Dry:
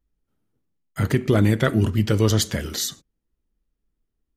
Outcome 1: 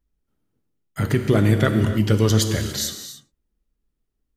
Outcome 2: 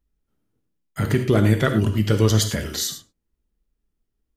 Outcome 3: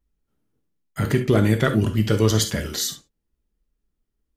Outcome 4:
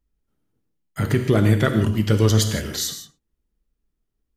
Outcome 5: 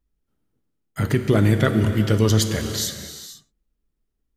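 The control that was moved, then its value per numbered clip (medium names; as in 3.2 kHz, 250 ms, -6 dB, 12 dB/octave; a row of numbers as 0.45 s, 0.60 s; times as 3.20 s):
gated-style reverb, gate: 320 ms, 130 ms, 90 ms, 190 ms, 520 ms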